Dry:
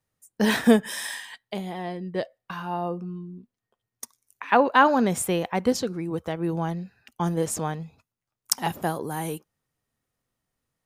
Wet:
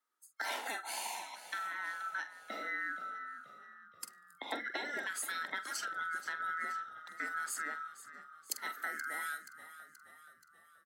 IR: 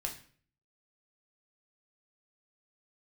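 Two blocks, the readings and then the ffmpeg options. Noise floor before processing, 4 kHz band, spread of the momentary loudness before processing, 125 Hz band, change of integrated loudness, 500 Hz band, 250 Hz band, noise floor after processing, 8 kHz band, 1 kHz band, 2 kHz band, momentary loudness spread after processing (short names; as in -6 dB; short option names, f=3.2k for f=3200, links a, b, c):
under -85 dBFS, -10.5 dB, 19 LU, under -40 dB, -14.0 dB, -24.5 dB, -30.0 dB, -65 dBFS, -10.0 dB, -14.0 dB, -5.5 dB, 15 LU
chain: -filter_complex "[0:a]afftfilt=real='real(if(lt(b,960),b+48*(1-2*mod(floor(b/48),2)),b),0)':imag='imag(if(lt(b,960),b+48*(1-2*mod(floor(b/48),2)),b),0)':win_size=2048:overlap=0.75,afftfilt=real='re*lt(hypot(re,im),0.501)':imag='im*lt(hypot(re,im),0.501)':win_size=1024:overlap=0.75,highpass=f=130:w=0.5412,highpass=f=130:w=1.3066,acompressor=threshold=-29dB:ratio=6,afreqshift=110,asplit=2[a][b];[b]adelay=45,volume=-11dB[c];[a][c]amix=inputs=2:normalize=0,asplit=6[d][e][f][g][h][i];[e]adelay=478,afreqshift=-39,volume=-14dB[j];[f]adelay=956,afreqshift=-78,volume=-19.4dB[k];[g]adelay=1434,afreqshift=-117,volume=-24.7dB[l];[h]adelay=1912,afreqshift=-156,volume=-30.1dB[m];[i]adelay=2390,afreqshift=-195,volume=-35.4dB[n];[d][j][k][l][m][n]amix=inputs=6:normalize=0,volume=-6.5dB"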